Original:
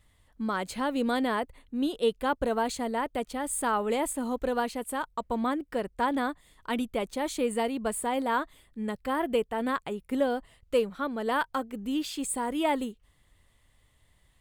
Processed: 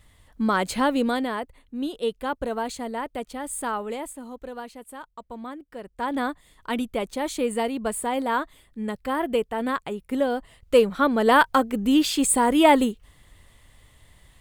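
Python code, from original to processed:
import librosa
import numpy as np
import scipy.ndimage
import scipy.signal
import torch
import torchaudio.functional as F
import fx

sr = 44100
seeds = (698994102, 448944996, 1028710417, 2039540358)

y = fx.gain(x, sr, db=fx.line((0.85, 8.0), (1.31, -0.5), (3.69, -0.5), (4.27, -8.0), (5.76, -8.0), (6.21, 3.0), (10.28, 3.0), (11.03, 11.0)))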